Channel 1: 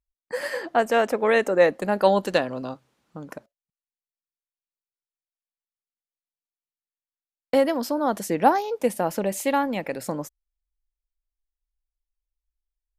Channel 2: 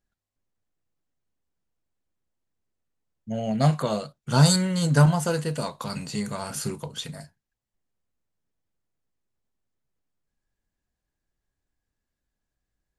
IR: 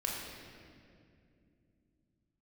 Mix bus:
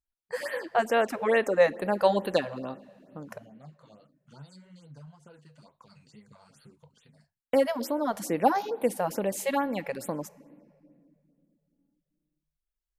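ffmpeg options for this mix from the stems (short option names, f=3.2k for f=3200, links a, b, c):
-filter_complex "[0:a]lowshelf=f=86:g=-2.5,volume=-4dB,asplit=2[a][b];[b]volume=-21dB[c];[1:a]lowpass=6.1k,acompressor=threshold=-32dB:ratio=2.5,flanger=delay=0.2:depth=8.7:regen=32:speed=1.9:shape=triangular,volume=-16.5dB[d];[2:a]atrim=start_sample=2205[e];[c][e]afir=irnorm=-1:irlink=0[f];[a][d][f]amix=inputs=3:normalize=0,afftfilt=real='re*(1-between(b*sr/1024,260*pow(6700/260,0.5+0.5*sin(2*PI*2.3*pts/sr))/1.41,260*pow(6700/260,0.5+0.5*sin(2*PI*2.3*pts/sr))*1.41))':imag='im*(1-between(b*sr/1024,260*pow(6700/260,0.5+0.5*sin(2*PI*2.3*pts/sr))/1.41,260*pow(6700/260,0.5+0.5*sin(2*PI*2.3*pts/sr))*1.41))':win_size=1024:overlap=0.75"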